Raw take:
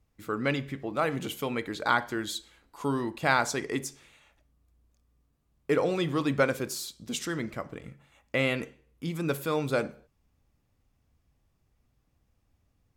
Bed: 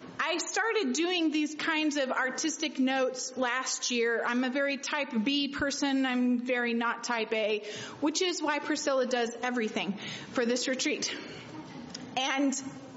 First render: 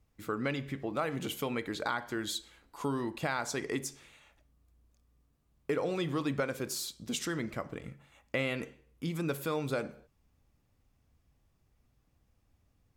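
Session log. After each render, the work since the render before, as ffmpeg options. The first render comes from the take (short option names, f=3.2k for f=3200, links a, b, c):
-af "alimiter=limit=-15.5dB:level=0:latency=1:release=364,acompressor=threshold=-32dB:ratio=2"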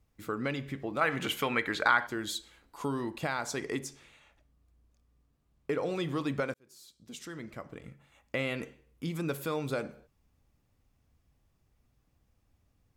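-filter_complex "[0:a]asettb=1/sr,asplit=3[a][b][c];[a]atrim=end=1.014[d];[b]atrim=start=1.01:end=2.07,asetpts=PTS-STARTPTS,afade=t=in:d=0.004:c=qsin,afade=t=out:st=1.056:d=0.004:c=qsin,equalizer=f=1.7k:w=0.67:g=11.5[e];[c]atrim=start=2.066[f];[d][e]acrossfade=d=0.004:c1=hsin:c2=qsin[g];[g][f]acrossfade=d=0.004:c1=qsin:c2=hsin,asettb=1/sr,asplit=3[h][i][j];[h]atrim=end=3.794[k];[i]atrim=start=3.79:end=5.83,asetpts=PTS-STARTPTS,afade=t=in:d=0.004:c=qsin,afade=t=out:st=2.036:d=0.004:c=qsin,highshelf=f=7.9k:g=-7[l];[j]atrim=start=5.826[m];[k][l]acrossfade=d=0.004:c1=hsin:c2=qsin[n];[n][m]acrossfade=d=0.004:c1=qsin:c2=hsin,asplit=2[o][p];[o]atrim=end=6.54,asetpts=PTS-STARTPTS,afade=t=out:st=6.536:d=0.004:c=hsin[q];[p]atrim=start=6.54,asetpts=PTS-STARTPTS,afade=t=in:d=1.96[r];[q][r]concat=n=2:v=0:a=1"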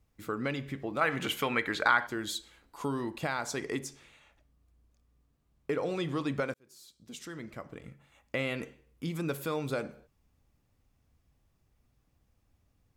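-filter_complex "[0:a]asettb=1/sr,asplit=3[a][b][c];[a]atrim=end=5.934[d];[b]atrim=start=5.93:end=6.36,asetpts=PTS-STARTPTS,afade=t=in:d=0.004:c=qsin,afade=t=out:st=0.426:d=0.004:c=qsin,lowpass=11k[e];[c]atrim=start=6.356[f];[d][e]acrossfade=d=0.004:c1=hsin:c2=qsin[g];[g][f]acrossfade=d=0.004:c1=qsin:c2=hsin"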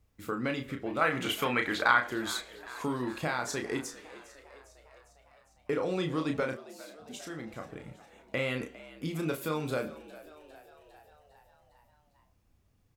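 -filter_complex "[0:a]asplit=2[a][b];[b]adelay=32,volume=-5.5dB[c];[a][c]amix=inputs=2:normalize=0,asplit=7[d][e][f][g][h][i][j];[e]adelay=404,afreqshift=73,volume=-18dB[k];[f]adelay=808,afreqshift=146,volume=-22dB[l];[g]adelay=1212,afreqshift=219,volume=-26dB[m];[h]adelay=1616,afreqshift=292,volume=-30dB[n];[i]adelay=2020,afreqshift=365,volume=-34.1dB[o];[j]adelay=2424,afreqshift=438,volume=-38.1dB[p];[d][k][l][m][n][o][p]amix=inputs=7:normalize=0"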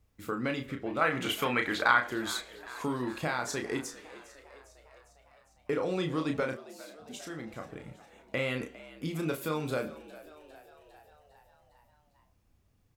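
-filter_complex "[0:a]asettb=1/sr,asplit=3[a][b][c];[a]atrim=end=0.664[d];[b]atrim=start=0.66:end=1.22,asetpts=PTS-STARTPTS,afade=t=in:d=0.004:c=qsin,afade=t=out:st=0.556:d=0.004:c=qsin,equalizer=f=14k:w=0.32:g=-3.5[e];[c]atrim=start=1.216[f];[d][e]acrossfade=d=0.004:c1=hsin:c2=qsin[g];[g][f]acrossfade=d=0.004:c1=qsin:c2=hsin"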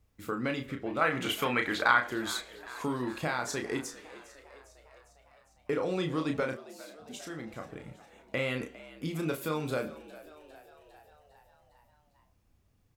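-af anull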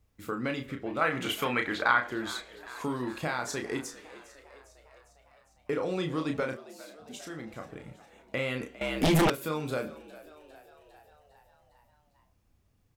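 -filter_complex "[0:a]asettb=1/sr,asplit=3[a][b][c];[a]atrim=end=1.634[d];[b]atrim=start=1.63:end=2.57,asetpts=PTS-STARTPTS,afade=t=in:d=0.004:c=qsin,afade=t=out:st=0.936:d=0.004:c=qsin,highshelf=f=5.9k:g=-8[e];[c]atrim=start=2.566[f];[d][e]acrossfade=d=0.004:c1=hsin:c2=qsin[g];[g][f]acrossfade=d=0.004:c1=qsin:c2=hsin,asettb=1/sr,asplit=3[h][i][j];[h]atrim=end=8.814[k];[i]atrim=start=8.81:end=9.3,asetpts=PTS-STARTPTS,afade=t=in:d=0.004:c=qsin,afade=t=out:st=0.486:d=0.004:c=qsin,aeval=exprs='0.112*sin(PI/2*5.01*val(0)/0.112)':c=same[l];[j]atrim=start=9.296[m];[k][l]acrossfade=d=0.004:c1=hsin:c2=qsin[n];[n][m]acrossfade=d=0.004:c1=qsin:c2=hsin"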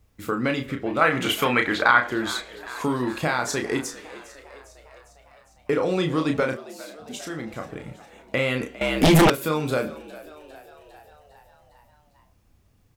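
-af "volume=8dB,alimiter=limit=-3dB:level=0:latency=1"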